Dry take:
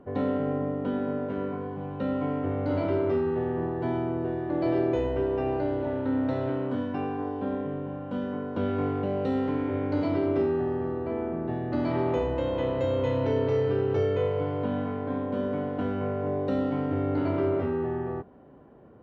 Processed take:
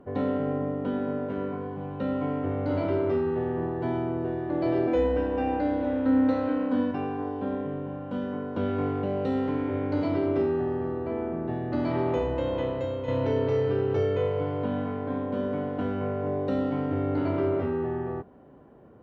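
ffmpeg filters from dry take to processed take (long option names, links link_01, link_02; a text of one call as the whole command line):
ffmpeg -i in.wav -filter_complex "[0:a]asettb=1/sr,asplit=3[link_01][link_02][link_03];[link_01]atrim=end=4.874[link_04];[link_02]atrim=start=4.87:end=6.91,asetpts=PTS-STARTPTS,afade=type=in:duration=0.004:curve=qsin,afade=type=out:start_time=2.036:duration=0.004:curve=qsin,aecho=1:1:3.9:0.91,atrim=end_sample=89964[link_05];[link_03]atrim=start=6.906[link_06];[link_04][link_05]acrossfade=duration=0.004:curve1=hsin:curve2=qsin[link_07];[link_07][link_06]acrossfade=duration=0.004:curve1=qsin:curve2=hsin,asplit=2[link_08][link_09];[link_08]atrim=end=13.08,asetpts=PTS-STARTPTS,afade=type=out:start_time=12.55:duration=0.53:silence=0.398107[link_10];[link_09]atrim=start=13.08,asetpts=PTS-STARTPTS,afade=type=in:duration=0.004:curve=hsin:silence=0.398107[link_11];[link_10][link_11]concat=n=2:v=0:a=1" out.wav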